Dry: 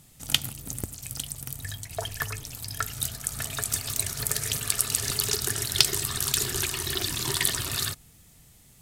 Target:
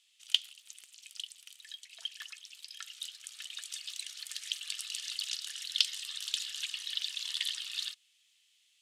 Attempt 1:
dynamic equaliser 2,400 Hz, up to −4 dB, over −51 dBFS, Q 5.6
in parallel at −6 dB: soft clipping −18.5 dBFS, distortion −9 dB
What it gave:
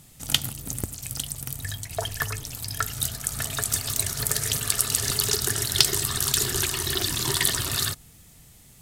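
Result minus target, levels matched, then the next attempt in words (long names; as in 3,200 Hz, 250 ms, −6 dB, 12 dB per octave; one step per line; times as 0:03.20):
4,000 Hz band −4.5 dB
dynamic equaliser 2,400 Hz, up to −4 dB, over −51 dBFS, Q 5.6
four-pole ladder band-pass 3,400 Hz, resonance 55%
in parallel at −6 dB: soft clipping −18.5 dBFS, distortion −11 dB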